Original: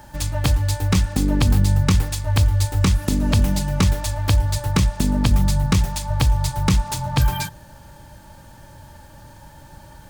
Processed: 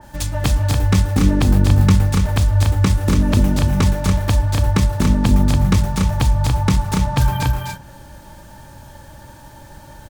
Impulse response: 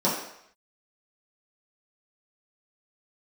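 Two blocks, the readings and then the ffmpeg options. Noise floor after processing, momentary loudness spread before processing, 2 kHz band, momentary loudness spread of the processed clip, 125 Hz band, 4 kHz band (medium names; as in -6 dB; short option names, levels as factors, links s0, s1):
-41 dBFS, 4 LU, +2.5 dB, 5 LU, +3.5 dB, -0.5 dB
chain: -filter_complex "[0:a]aecho=1:1:253.6|285.7:0.501|0.562,asplit=2[s0][s1];[1:a]atrim=start_sample=2205[s2];[s1][s2]afir=irnorm=-1:irlink=0,volume=0.0335[s3];[s0][s3]amix=inputs=2:normalize=0,adynamicequalizer=threshold=0.01:dfrequency=2500:dqfactor=0.7:tfrequency=2500:tqfactor=0.7:attack=5:release=100:ratio=0.375:range=2.5:mode=cutabove:tftype=highshelf,volume=1.19"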